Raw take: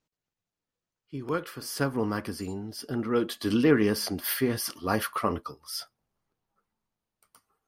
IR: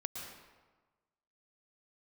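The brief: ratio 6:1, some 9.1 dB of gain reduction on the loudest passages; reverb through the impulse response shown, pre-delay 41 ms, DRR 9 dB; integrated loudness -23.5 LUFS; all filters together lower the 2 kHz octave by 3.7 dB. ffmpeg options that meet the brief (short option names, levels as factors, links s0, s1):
-filter_complex "[0:a]equalizer=f=2000:t=o:g=-5,acompressor=threshold=0.0447:ratio=6,asplit=2[s0][s1];[1:a]atrim=start_sample=2205,adelay=41[s2];[s1][s2]afir=irnorm=-1:irlink=0,volume=0.355[s3];[s0][s3]amix=inputs=2:normalize=0,volume=2.99"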